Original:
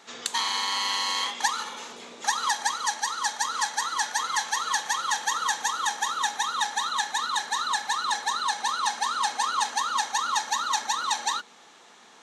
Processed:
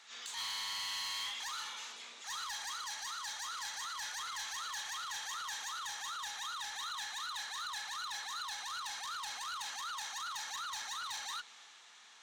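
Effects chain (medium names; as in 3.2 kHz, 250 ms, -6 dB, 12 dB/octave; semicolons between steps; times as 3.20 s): transient shaper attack -11 dB, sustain +2 dB; saturation -27 dBFS, distortion -13 dB; overdrive pedal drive 18 dB, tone 4.5 kHz, clips at -15.5 dBFS; amplifier tone stack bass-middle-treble 5-5-5; trim -6 dB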